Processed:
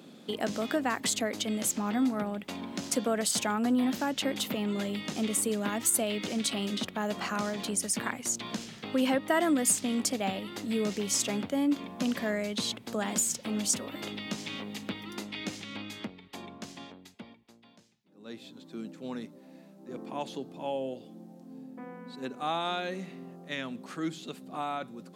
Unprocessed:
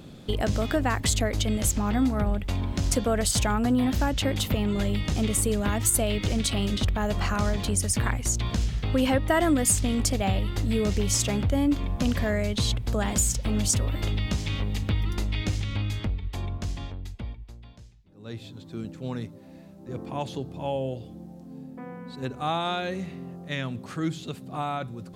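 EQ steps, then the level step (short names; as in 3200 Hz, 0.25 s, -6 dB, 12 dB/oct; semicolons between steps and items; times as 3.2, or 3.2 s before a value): Chebyshev high-pass 210 Hz, order 3; -3.0 dB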